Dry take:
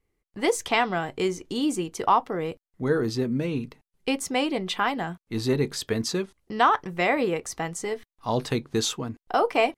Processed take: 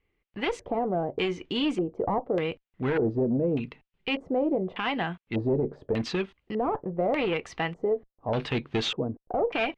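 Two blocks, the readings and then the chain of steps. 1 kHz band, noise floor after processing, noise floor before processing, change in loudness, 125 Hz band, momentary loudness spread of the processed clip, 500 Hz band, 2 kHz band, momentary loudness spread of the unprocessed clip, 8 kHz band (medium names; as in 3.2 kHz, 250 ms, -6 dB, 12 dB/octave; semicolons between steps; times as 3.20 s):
-7.0 dB, -84 dBFS, under -85 dBFS, -2.5 dB, -1.0 dB, 6 LU, -0.5 dB, -4.5 dB, 9 LU, under -15 dB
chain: one-sided clip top -24.5 dBFS; LFO low-pass square 0.84 Hz 570–2800 Hz; peak limiter -18 dBFS, peak gain reduction 9.5 dB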